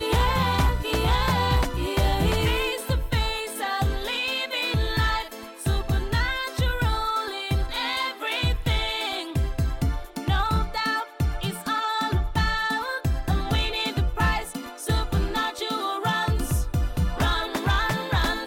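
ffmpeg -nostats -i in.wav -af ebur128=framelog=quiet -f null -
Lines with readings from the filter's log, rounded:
Integrated loudness:
  I:         -25.3 LUFS
  Threshold: -35.4 LUFS
Loudness range:
  LRA:         1.9 LU
  Threshold: -45.7 LUFS
  LRA low:   -26.3 LUFS
  LRA high:  -24.4 LUFS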